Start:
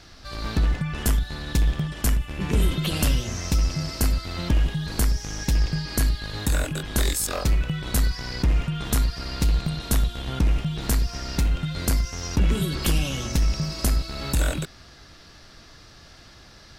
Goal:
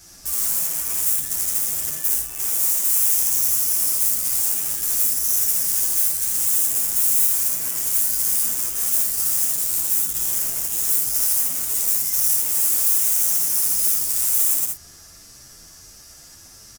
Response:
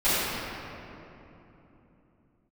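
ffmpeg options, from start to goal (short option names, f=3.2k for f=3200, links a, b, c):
-filter_complex "[0:a]asettb=1/sr,asplit=3[a][b][c];[a]atrim=end=1.894[d];[b]atrim=start=1.89:end=2.41,asetpts=PTS-STARTPTS,afade=t=in:d=0.004:c=qsin,afade=t=out:st=0.516:d=0.004:c=qsin,highpass=f=210:p=1[e];[c]atrim=start=2.406[f];[d][e]acrossfade=d=0.004:c1=hsin:c2=qsin[g];[g][f]acrossfade=d=0.004:c1=qsin:c2=hsin,afftfilt=real='re*lt(hypot(re,im),0.398)':imag='im*lt(hypot(re,im),0.398)':win_size=1024:overlap=0.75,asplit=2[h][i];[i]acompressor=threshold=-34dB:ratio=12,volume=0.5dB[j];[h][j]amix=inputs=2:normalize=0,aeval=exprs='(mod(17.8*val(0)+1,2)-1)/17.8':c=same,aecho=1:1:56|80|112:0.596|0.473|0.126,aexciter=amount=15.8:drive=3.3:freq=5.9k,acrusher=bits=4:mode=log:mix=0:aa=0.000001,asplit=2[k][l];[l]adelay=9.2,afreqshift=1.4[m];[k][m]amix=inputs=2:normalize=1,volume=-9dB"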